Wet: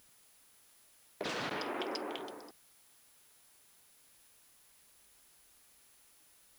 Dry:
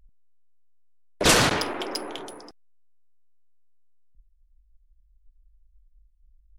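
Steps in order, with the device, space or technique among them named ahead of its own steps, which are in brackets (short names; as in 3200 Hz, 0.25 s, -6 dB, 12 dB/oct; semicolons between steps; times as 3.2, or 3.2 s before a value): medium wave at night (BPF 180–4200 Hz; compressor, threshold -35 dBFS, peak gain reduction 18 dB; tremolo 0.57 Hz, depth 63%; whine 10000 Hz -69 dBFS; white noise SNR 19 dB); gain +1 dB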